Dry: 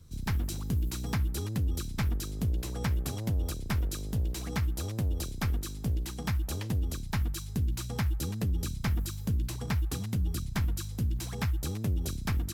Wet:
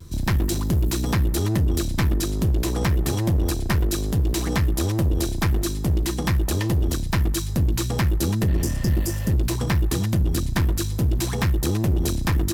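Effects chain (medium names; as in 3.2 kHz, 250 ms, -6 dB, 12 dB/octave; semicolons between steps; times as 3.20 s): small resonant body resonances 340/1000/1800 Hz, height 11 dB, ringing for 95 ms; in parallel at 0 dB: peak limiter -26 dBFS, peak gain reduction 6.5 dB; on the sum: spectral replace 8.51–9.31 s, 500–4600 Hz before; one-sided clip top -28 dBFS; vibrato 0.37 Hz 14 cents; trim +6.5 dB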